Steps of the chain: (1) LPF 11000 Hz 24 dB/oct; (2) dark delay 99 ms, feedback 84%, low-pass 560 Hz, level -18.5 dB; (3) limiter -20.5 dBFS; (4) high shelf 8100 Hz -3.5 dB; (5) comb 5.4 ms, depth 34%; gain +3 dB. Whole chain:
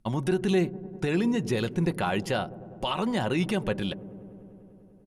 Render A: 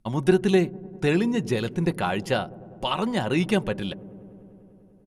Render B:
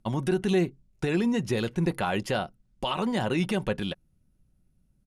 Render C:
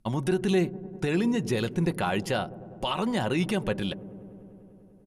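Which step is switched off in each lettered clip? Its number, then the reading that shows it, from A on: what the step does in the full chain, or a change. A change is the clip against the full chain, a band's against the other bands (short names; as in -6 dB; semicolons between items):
3, crest factor change +6.5 dB; 2, momentary loudness spread change -3 LU; 4, 8 kHz band +1.5 dB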